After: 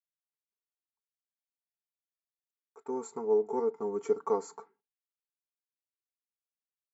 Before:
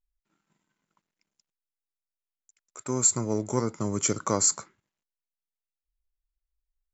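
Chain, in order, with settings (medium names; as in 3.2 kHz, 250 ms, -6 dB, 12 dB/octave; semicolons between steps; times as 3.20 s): expander -54 dBFS; two resonant band-passes 590 Hz, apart 0.88 oct; comb 4.4 ms, depth 85%; trim +2.5 dB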